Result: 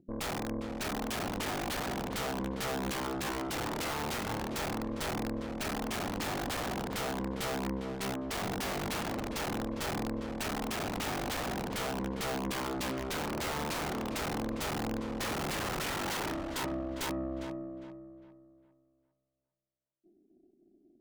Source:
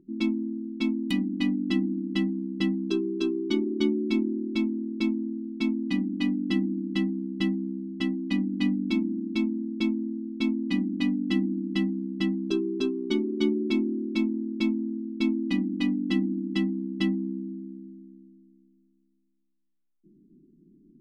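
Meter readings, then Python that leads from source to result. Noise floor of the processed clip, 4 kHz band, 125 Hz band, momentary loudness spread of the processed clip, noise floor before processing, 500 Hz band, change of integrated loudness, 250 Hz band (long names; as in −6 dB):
−74 dBFS, −0.5 dB, can't be measured, 2 LU, −68 dBFS, −3.5 dB, −7.0 dB, −12.5 dB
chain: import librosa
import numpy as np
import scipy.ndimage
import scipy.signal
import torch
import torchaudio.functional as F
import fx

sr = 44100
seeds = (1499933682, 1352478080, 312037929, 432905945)

y = fx.filter_sweep_highpass(x, sr, from_hz=99.0, to_hz=400.0, start_s=14.7, end_s=16.41, q=2.3)
y = (np.mod(10.0 ** (23.0 / 20.0) * y + 1.0, 2.0) - 1.0) / 10.0 ** (23.0 / 20.0)
y = fx.cheby_harmonics(y, sr, harmonics=(4, 5, 7, 8), levels_db=(-7, -20, -26, -22), full_scale_db=-23.0)
y = fx.echo_filtered(y, sr, ms=404, feedback_pct=34, hz=3000.0, wet_db=-9.0)
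y = y * 10.0 ** (-8.5 / 20.0)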